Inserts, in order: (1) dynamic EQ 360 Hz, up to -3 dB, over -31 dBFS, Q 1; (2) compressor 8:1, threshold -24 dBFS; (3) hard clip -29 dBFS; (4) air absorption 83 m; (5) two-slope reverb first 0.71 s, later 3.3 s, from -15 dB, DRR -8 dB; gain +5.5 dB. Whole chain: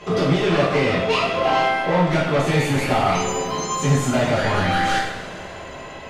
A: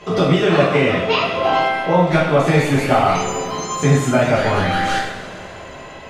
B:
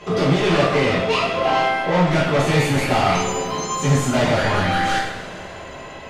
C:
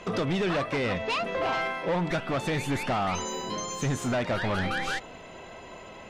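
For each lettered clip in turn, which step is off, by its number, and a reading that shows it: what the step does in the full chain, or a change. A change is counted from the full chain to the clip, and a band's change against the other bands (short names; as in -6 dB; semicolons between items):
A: 3, distortion -8 dB; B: 2, mean gain reduction 2.0 dB; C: 5, momentary loudness spread change +6 LU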